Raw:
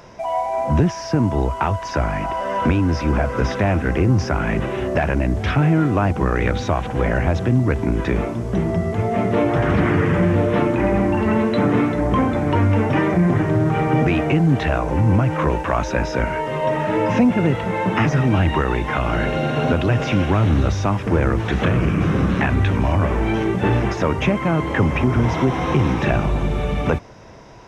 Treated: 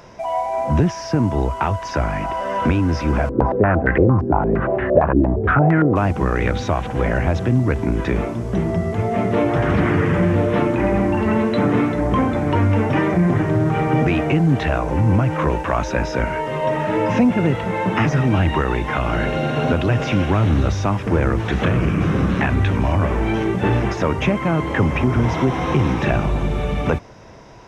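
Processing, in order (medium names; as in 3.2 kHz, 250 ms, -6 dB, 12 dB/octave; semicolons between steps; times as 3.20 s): 3.29–5.96 s: step-sequenced low-pass 8.7 Hz 330–1800 Hz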